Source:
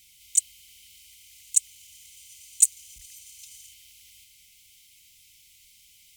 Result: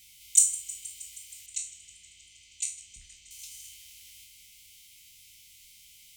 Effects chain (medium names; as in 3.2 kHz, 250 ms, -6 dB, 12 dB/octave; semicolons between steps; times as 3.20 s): spectral sustain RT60 0.37 s; 1.46–3.31 s: distance through air 160 m; modulated delay 158 ms, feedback 77%, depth 72 cents, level -17.5 dB